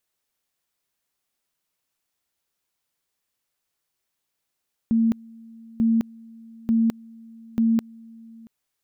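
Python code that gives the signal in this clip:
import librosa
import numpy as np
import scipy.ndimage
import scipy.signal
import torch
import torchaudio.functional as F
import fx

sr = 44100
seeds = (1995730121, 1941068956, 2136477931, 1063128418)

y = fx.two_level_tone(sr, hz=227.0, level_db=-16.0, drop_db=25.5, high_s=0.21, low_s=0.68, rounds=4)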